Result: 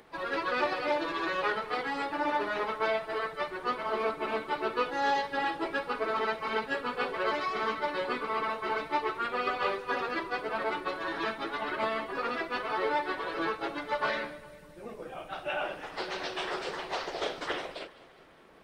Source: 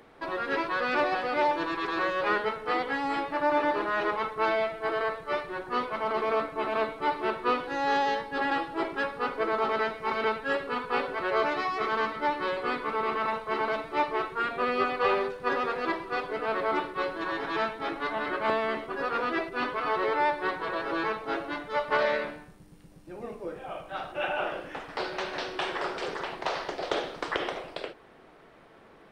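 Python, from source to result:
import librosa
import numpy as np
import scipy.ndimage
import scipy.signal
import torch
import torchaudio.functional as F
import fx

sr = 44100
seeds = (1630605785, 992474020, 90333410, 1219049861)

p1 = fx.high_shelf(x, sr, hz=3100.0, db=5.5)
p2 = p1 + fx.echo_feedback(p1, sr, ms=314, feedback_pct=54, wet_db=-19.5, dry=0)
y = fx.stretch_vocoder_free(p2, sr, factor=0.64)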